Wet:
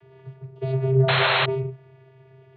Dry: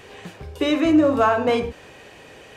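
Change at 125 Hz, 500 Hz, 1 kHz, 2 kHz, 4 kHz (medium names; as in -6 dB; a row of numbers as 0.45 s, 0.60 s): +13.5 dB, -4.0 dB, -3.5 dB, +4.0 dB, +6.0 dB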